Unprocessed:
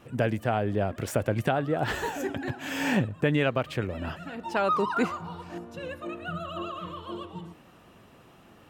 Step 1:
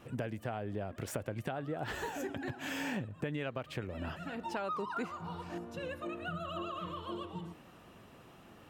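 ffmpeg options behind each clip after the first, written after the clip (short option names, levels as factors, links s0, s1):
-af "acompressor=threshold=0.02:ratio=4,volume=0.794"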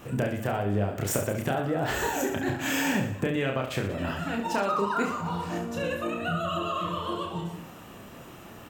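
-af "aexciter=amount=1.4:drive=6.8:freq=6300,aecho=1:1:30|69|119.7|185.6|271.3:0.631|0.398|0.251|0.158|0.1,volume=2.66"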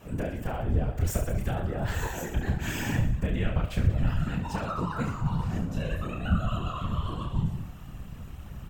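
-af "lowshelf=f=220:g=5,afftfilt=real='hypot(re,im)*cos(2*PI*random(0))':imag='hypot(re,im)*sin(2*PI*random(1))':win_size=512:overlap=0.75,asubboost=boost=9:cutoff=120"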